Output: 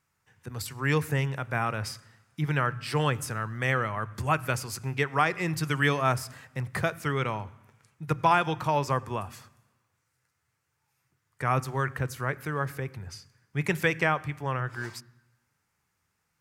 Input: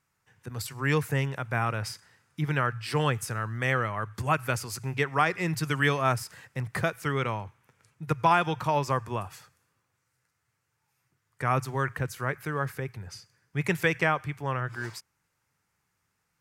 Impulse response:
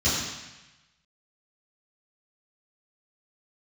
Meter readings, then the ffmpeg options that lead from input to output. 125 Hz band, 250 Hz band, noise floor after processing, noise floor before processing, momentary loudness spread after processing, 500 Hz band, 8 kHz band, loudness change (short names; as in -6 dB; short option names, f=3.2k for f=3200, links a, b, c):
0.0 dB, 0.0 dB, -78 dBFS, -78 dBFS, 13 LU, 0.0 dB, 0.0 dB, 0.0 dB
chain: -filter_complex "[0:a]asplit=2[a][b];[1:a]atrim=start_sample=2205,lowpass=2.8k[c];[b][c]afir=irnorm=-1:irlink=0,volume=-33dB[d];[a][d]amix=inputs=2:normalize=0"